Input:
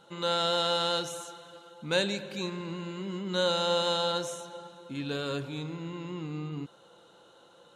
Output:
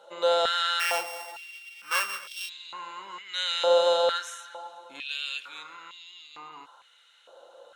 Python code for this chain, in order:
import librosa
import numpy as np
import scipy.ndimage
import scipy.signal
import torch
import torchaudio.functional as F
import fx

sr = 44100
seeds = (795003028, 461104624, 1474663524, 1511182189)

y = fx.sample_sort(x, sr, block=16, at=(0.79, 2.48), fade=0.02)
y = fx.filter_held_highpass(y, sr, hz=2.2, low_hz=580.0, high_hz=3500.0)